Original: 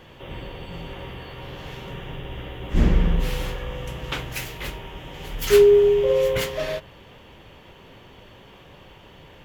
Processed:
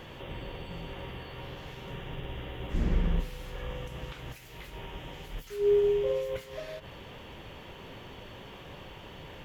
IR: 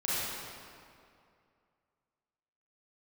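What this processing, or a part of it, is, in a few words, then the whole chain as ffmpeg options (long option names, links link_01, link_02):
de-esser from a sidechain: -filter_complex "[0:a]asplit=2[link_01][link_02];[link_02]highpass=4900,apad=whole_len=416610[link_03];[link_01][link_03]sidechaincompress=threshold=-60dB:ratio=5:attack=4:release=74,volume=2.5dB"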